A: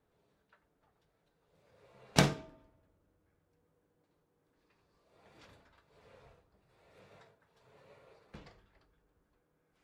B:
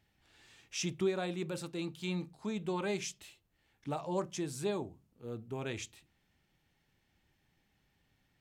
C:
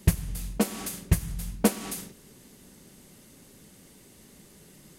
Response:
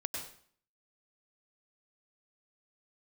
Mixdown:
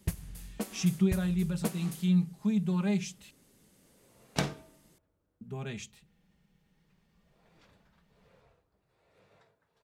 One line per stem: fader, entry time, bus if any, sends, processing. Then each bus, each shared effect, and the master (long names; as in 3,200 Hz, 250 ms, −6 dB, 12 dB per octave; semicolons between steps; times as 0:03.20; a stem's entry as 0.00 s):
−4.5 dB, 2.20 s, no send, no processing
−2.5 dB, 0.00 s, muted 0:03.31–0:05.41, no send, low shelf with overshoot 240 Hz +6.5 dB, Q 3; comb filter 4.9 ms, depth 60%
−11.0 dB, 0.00 s, no send, no processing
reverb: not used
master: no processing